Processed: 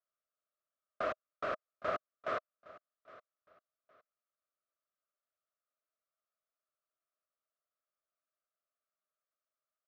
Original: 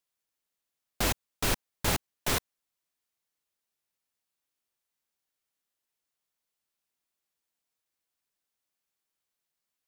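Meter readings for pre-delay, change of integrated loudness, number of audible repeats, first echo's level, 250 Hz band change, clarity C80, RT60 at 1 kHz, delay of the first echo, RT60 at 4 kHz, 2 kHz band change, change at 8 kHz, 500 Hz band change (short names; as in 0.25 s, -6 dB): none, -9.0 dB, 2, -20.0 dB, -15.0 dB, none, none, 0.813 s, none, -8.5 dB, under -35 dB, -1.0 dB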